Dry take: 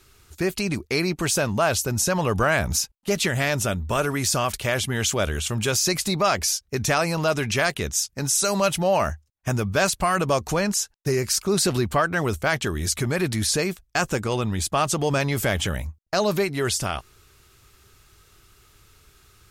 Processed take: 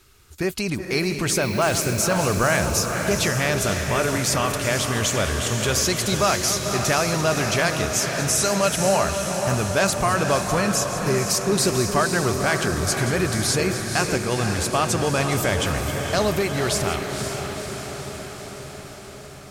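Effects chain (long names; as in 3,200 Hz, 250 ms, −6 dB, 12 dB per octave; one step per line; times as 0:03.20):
delay that plays each chunk backwards 213 ms, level −12.5 dB
0:01.41–0:02.05: background noise violet −44 dBFS
feedback delay with all-pass diffusion 504 ms, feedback 68%, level −6 dB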